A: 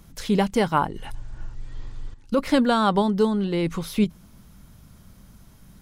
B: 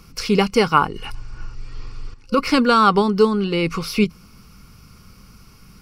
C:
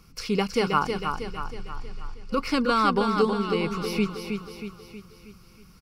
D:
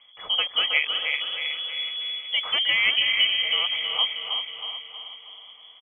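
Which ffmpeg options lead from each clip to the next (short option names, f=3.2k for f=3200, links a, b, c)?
-af "superequalizer=7b=1.58:8b=0.562:10b=2.51:12b=2.82:14b=3.16,volume=2.5dB"
-af "aecho=1:1:318|636|954|1272|1590|1908:0.501|0.256|0.13|0.0665|0.0339|0.0173,volume=-8dB"
-af "aecho=1:1:372|744|1116|1488|1860:0.376|0.18|0.0866|0.0416|0.02,lowpass=f=2.9k:t=q:w=0.5098,lowpass=f=2.9k:t=q:w=0.6013,lowpass=f=2.9k:t=q:w=0.9,lowpass=f=2.9k:t=q:w=2.563,afreqshift=-3400"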